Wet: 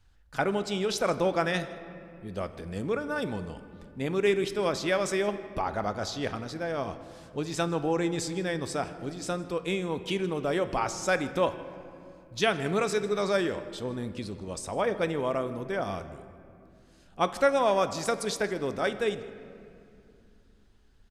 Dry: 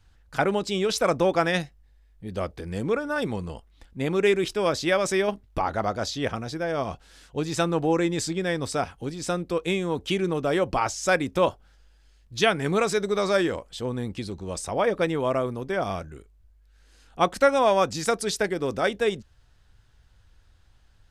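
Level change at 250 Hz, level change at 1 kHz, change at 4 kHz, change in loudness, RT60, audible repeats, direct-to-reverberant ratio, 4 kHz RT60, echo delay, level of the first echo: -4.0 dB, -4.0 dB, -4.5 dB, -4.0 dB, 2.6 s, 1, 10.5 dB, 1.5 s, 0.158 s, -22.0 dB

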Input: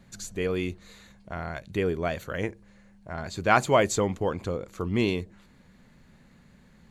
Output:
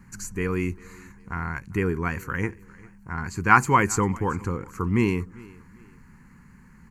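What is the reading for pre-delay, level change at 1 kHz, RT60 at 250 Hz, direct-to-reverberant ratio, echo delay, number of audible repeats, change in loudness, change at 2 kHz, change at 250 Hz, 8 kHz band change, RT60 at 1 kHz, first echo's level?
none, +5.0 dB, none, none, 0.398 s, 2, +3.0 dB, +5.5 dB, +4.0 dB, +3.0 dB, none, -23.0 dB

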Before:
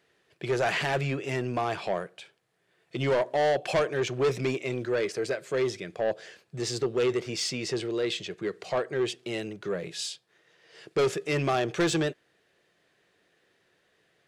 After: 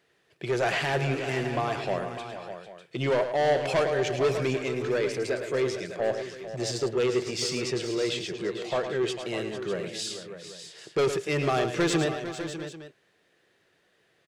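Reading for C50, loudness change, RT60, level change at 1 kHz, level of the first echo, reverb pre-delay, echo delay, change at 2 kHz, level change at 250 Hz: none, +1.0 dB, none, +1.0 dB, -9.0 dB, none, 0.107 s, +1.0 dB, +1.0 dB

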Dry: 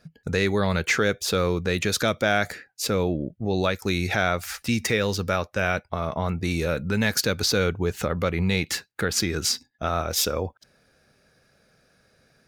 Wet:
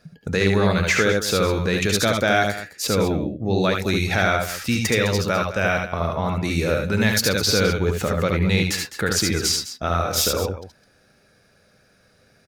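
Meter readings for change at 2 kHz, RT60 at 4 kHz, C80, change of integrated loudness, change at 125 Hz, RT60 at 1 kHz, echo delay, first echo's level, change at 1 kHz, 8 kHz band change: +4.0 dB, none, none, +4.0 dB, +4.5 dB, none, 71 ms, -5.0 dB, +4.0 dB, +4.0 dB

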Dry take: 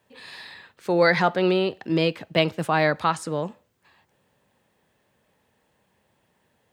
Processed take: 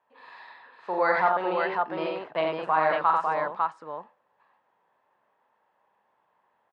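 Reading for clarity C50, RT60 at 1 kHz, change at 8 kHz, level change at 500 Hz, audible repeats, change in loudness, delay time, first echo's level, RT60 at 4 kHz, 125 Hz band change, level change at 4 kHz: none, none, under -20 dB, -4.5 dB, 3, -3.0 dB, 44 ms, -5.0 dB, none, -17.5 dB, -12.5 dB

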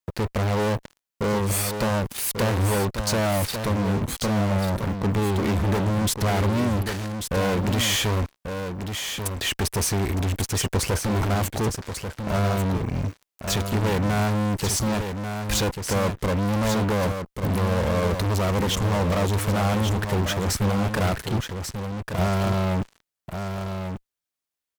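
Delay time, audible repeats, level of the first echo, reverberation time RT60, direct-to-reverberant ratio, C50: 1.14 s, 1, -7.0 dB, none, none, none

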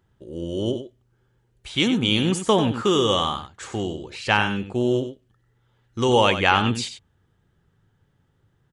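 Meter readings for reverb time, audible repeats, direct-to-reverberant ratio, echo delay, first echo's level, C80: none, 1, none, 95 ms, -10.0 dB, none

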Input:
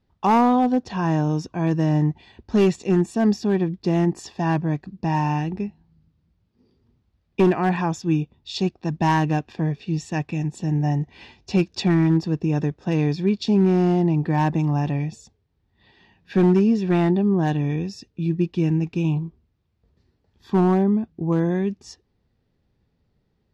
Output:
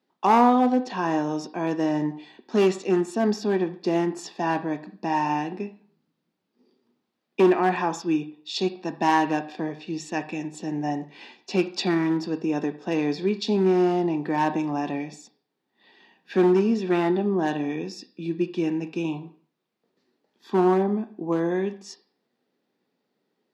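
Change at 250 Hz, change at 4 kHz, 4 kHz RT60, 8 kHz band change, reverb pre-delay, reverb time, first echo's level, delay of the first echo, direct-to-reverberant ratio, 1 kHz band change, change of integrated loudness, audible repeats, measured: -3.5 dB, +0.5 dB, 0.40 s, n/a, 7 ms, 0.45 s, none, none, 9.0 dB, +0.5 dB, -3.0 dB, none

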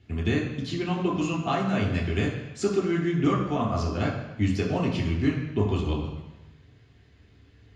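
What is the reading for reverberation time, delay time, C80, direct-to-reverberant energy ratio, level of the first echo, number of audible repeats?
1.0 s, none, 6.5 dB, -4.0 dB, none, none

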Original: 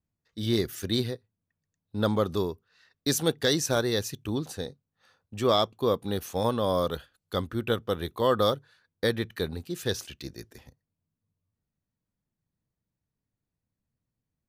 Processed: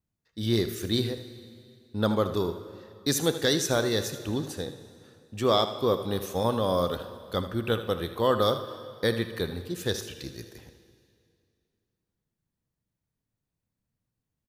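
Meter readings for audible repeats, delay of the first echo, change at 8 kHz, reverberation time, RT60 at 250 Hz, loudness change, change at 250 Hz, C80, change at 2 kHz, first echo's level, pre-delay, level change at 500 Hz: 1, 79 ms, +0.5 dB, 2.5 s, 2.4 s, +0.5 dB, +0.5 dB, 13.0 dB, +0.5 dB, -12.5 dB, 5 ms, +0.5 dB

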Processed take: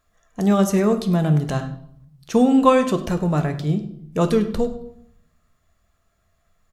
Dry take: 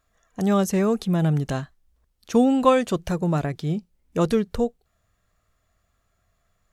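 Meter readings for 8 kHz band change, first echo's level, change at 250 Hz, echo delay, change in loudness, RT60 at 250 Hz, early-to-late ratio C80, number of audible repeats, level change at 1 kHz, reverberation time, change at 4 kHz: +2.0 dB, -17.0 dB, +3.5 dB, 0.101 s, +3.0 dB, 1.0 s, 13.5 dB, 1, +3.0 dB, 0.70 s, +2.0 dB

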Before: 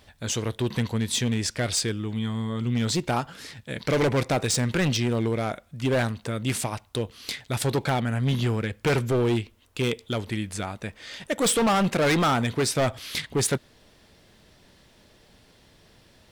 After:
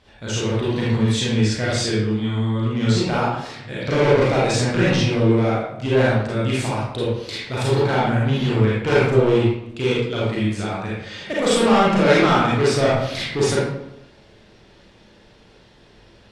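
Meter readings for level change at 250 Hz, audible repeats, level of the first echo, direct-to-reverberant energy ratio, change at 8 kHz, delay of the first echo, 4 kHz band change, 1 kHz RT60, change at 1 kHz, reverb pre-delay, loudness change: +6.5 dB, none, none, -7.5 dB, -2.0 dB, none, +4.0 dB, 0.80 s, +6.5 dB, 32 ms, +6.0 dB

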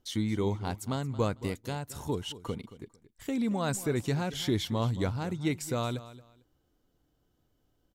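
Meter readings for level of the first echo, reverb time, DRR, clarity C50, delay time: -16.0 dB, none, none, none, 0.225 s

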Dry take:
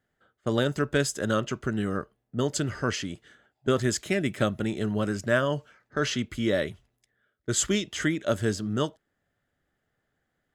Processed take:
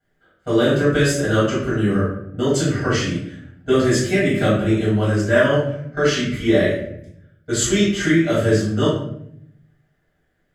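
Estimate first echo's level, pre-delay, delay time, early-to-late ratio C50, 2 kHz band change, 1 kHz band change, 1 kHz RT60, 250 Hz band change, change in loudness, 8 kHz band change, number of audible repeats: none, 3 ms, none, 1.5 dB, +8.5 dB, +6.5 dB, 0.65 s, +10.0 dB, +9.0 dB, +5.5 dB, none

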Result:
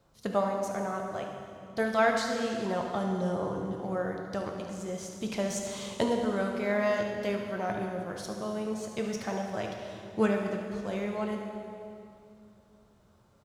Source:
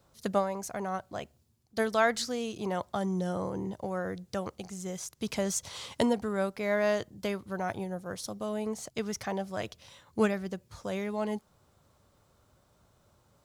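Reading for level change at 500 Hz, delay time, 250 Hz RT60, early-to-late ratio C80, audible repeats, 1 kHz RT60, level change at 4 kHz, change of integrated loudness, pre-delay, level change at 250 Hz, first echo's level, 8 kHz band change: +1.5 dB, 73 ms, 3.1 s, 4.5 dB, 1, 2.4 s, -1.0 dB, +1.0 dB, 3 ms, +1.0 dB, -11.0 dB, -3.5 dB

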